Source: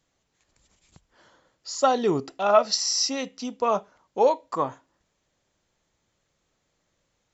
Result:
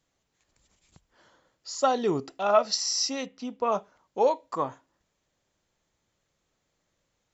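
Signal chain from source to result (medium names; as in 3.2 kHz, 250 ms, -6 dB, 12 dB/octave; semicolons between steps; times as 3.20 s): 3.26–3.72 s: tone controls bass +1 dB, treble -11 dB; trim -3 dB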